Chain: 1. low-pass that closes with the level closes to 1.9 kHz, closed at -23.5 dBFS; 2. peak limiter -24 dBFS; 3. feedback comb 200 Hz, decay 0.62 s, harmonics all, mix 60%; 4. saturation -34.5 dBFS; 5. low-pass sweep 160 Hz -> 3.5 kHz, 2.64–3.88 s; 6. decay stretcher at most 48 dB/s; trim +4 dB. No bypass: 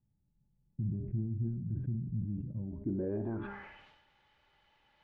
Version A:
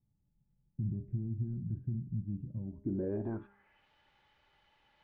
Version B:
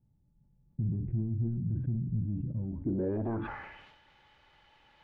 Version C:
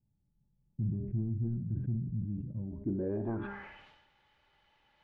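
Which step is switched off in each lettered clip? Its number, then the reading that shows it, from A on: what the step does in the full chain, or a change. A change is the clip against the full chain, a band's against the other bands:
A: 6, momentary loudness spread change -4 LU; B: 3, 1 kHz band +3.5 dB; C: 2, mean gain reduction 1.5 dB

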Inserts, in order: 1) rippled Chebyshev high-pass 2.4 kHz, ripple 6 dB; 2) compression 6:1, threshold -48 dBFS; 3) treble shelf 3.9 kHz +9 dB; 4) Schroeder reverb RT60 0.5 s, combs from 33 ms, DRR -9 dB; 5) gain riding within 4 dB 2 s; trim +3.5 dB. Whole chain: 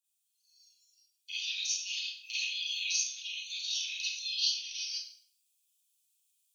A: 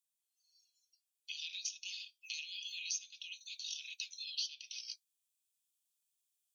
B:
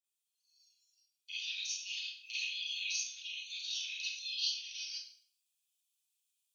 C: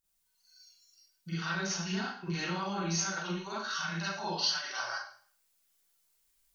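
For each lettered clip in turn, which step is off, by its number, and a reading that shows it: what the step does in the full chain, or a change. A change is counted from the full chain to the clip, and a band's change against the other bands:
4, crest factor change +3.0 dB; 3, loudness change -4.5 LU; 1, crest factor change -2.5 dB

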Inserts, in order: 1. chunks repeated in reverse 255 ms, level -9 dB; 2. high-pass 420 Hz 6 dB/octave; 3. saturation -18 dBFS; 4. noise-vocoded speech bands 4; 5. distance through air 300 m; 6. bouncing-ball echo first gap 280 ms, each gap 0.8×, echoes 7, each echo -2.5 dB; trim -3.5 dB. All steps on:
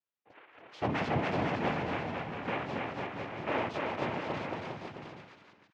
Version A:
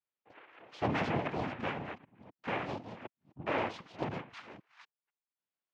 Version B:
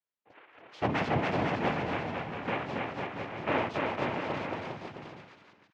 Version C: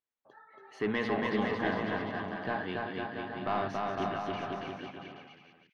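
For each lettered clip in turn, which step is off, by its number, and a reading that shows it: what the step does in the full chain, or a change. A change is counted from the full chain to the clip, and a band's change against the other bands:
6, crest factor change +3.5 dB; 3, distortion -12 dB; 4, 125 Hz band -5.0 dB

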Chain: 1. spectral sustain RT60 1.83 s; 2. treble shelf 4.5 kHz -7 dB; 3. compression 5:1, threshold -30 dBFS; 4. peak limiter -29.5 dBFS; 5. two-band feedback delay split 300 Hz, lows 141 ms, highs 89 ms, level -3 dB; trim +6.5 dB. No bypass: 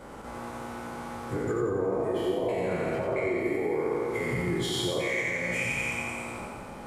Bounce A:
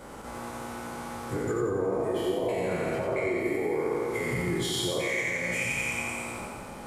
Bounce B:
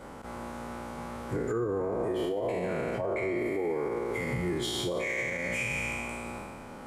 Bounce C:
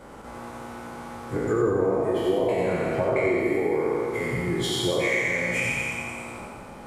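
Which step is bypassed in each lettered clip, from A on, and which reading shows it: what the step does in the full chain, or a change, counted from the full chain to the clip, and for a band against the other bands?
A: 2, 8 kHz band +4.0 dB; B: 5, echo-to-direct -1.5 dB to none; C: 4, mean gain reduction 2.5 dB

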